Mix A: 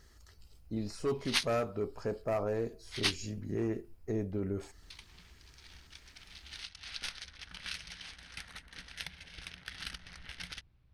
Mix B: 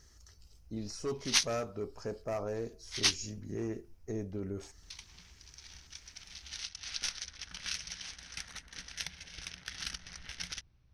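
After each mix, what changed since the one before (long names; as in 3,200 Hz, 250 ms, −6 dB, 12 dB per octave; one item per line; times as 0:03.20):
speech −3.5 dB
master: add parametric band 5,900 Hz +12.5 dB 0.44 octaves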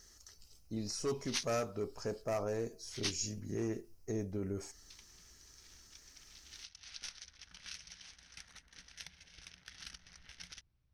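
speech: add high-shelf EQ 5,300 Hz +7.5 dB
background −10.0 dB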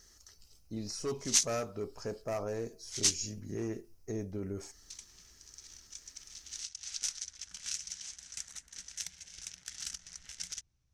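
background: remove moving average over 6 samples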